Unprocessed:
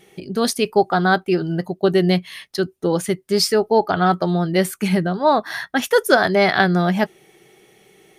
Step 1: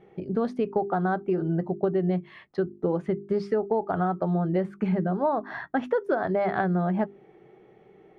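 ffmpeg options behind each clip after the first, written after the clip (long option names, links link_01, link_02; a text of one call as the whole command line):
ffmpeg -i in.wav -af "lowpass=1100,bandreject=frequency=50:width_type=h:width=6,bandreject=frequency=100:width_type=h:width=6,bandreject=frequency=150:width_type=h:width=6,bandreject=frequency=200:width_type=h:width=6,bandreject=frequency=250:width_type=h:width=6,bandreject=frequency=300:width_type=h:width=6,bandreject=frequency=350:width_type=h:width=6,bandreject=frequency=400:width_type=h:width=6,acompressor=threshold=-22dB:ratio=6" out.wav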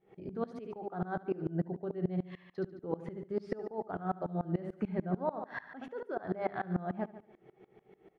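ffmpeg -i in.wav -af "alimiter=limit=-20.5dB:level=0:latency=1:release=301,aecho=1:1:72|144|216|288|360|432:0.355|0.174|0.0852|0.0417|0.0205|0.01,aeval=exprs='val(0)*pow(10,-23*if(lt(mod(-6.8*n/s,1),2*abs(-6.8)/1000),1-mod(-6.8*n/s,1)/(2*abs(-6.8)/1000),(mod(-6.8*n/s,1)-2*abs(-6.8)/1000)/(1-2*abs(-6.8)/1000))/20)':channel_layout=same" out.wav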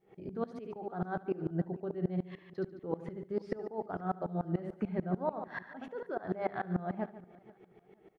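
ffmpeg -i in.wav -af "aecho=1:1:478|956:0.0708|0.0184" out.wav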